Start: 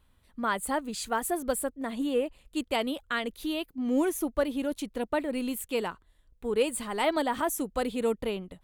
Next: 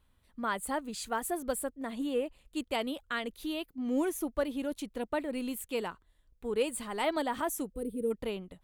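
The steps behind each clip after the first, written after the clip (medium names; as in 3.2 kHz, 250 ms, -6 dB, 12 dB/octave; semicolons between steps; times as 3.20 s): time-frequency box 7.74–8.11 s, 510–8100 Hz -21 dB; trim -4 dB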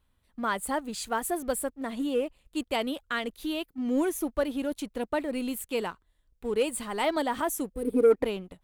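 time-frequency box 7.88–8.25 s, 250–2600 Hz +11 dB; waveshaping leveller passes 1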